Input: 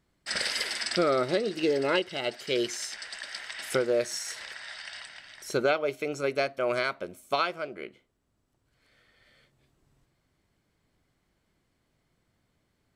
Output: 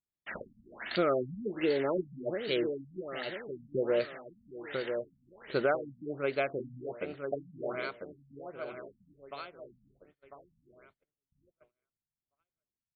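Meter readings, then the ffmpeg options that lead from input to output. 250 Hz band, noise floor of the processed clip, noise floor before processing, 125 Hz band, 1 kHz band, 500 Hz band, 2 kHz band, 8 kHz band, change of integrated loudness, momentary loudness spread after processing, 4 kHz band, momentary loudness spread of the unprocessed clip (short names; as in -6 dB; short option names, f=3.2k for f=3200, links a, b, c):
-2.5 dB, under -85 dBFS, -75 dBFS, -2.0 dB, -6.5 dB, -3.5 dB, -7.0 dB, under -40 dB, -5.0 dB, 18 LU, -11.0 dB, 14 LU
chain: -af "aecho=1:1:997|1994|2991|3988|4985:0.501|0.21|0.0884|0.0371|0.0156,agate=range=-26dB:threshold=-57dB:ratio=16:detection=peak,afftfilt=real='re*lt(b*sr/1024,240*pow(4700/240,0.5+0.5*sin(2*PI*1.3*pts/sr)))':imag='im*lt(b*sr/1024,240*pow(4700/240,0.5+0.5*sin(2*PI*1.3*pts/sr)))':win_size=1024:overlap=0.75,volume=-3dB"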